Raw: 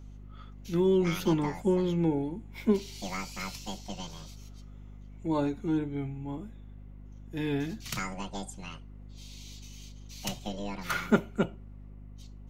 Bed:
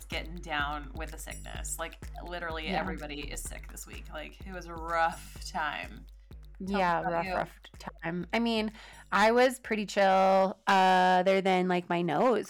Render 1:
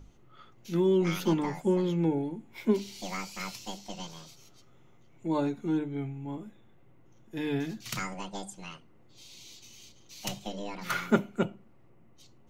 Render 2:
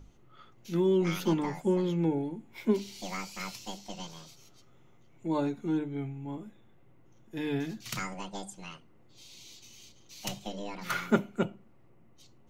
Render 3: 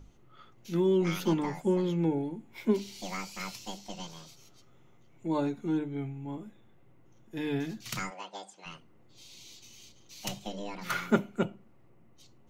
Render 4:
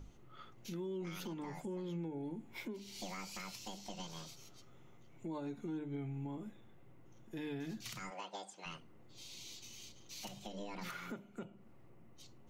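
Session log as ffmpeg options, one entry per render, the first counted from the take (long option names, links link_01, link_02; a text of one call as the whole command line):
ffmpeg -i in.wav -af "bandreject=frequency=50:width_type=h:width=6,bandreject=frequency=100:width_type=h:width=6,bandreject=frequency=150:width_type=h:width=6,bandreject=frequency=200:width_type=h:width=6,bandreject=frequency=250:width_type=h:width=6" out.wav
ffmpeg -i in.wav -af "volume=-1dB" out.wav
ffmpeg -i in.wav -filter_complex "[0:a]asplit=3[link_01][link_02][link_03];[link_01]afade=type=out:start_time=8.09:duration=0.02[link_04];[link_02]highpass=480,lowpass=5300,afade=type=in:start_time=8.09:duration=0.02,afade=type=out:start_time=8.65:duration=0.02[link_05];[link_03]afade=type=in:start_time=8.65:duration=0.02[link_06];[link_04][link_05][link_06]amix=inputs=3:normalize=0" out.wav
ffmpeg -i in.wav -af "acompressor=threshold=-37dB:ratio=4,alimiter=level_in=11dB:limit=-24dB:level=0:latency=1:release=180,volume=-11dB" out.wav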